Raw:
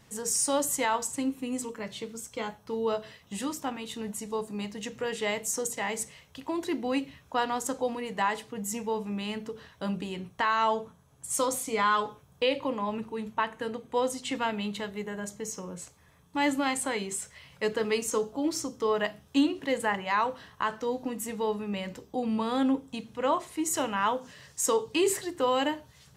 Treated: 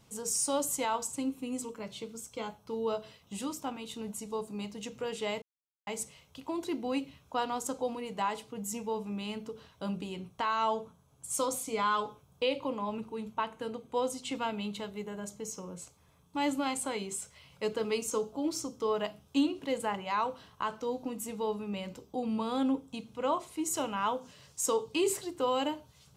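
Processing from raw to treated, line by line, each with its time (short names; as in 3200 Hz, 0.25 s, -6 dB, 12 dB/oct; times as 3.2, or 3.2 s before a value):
5.42–5.87 mute
whole clip: bell 1800 Hz -13.5 dB 0.24 oct; gain -3.5 dB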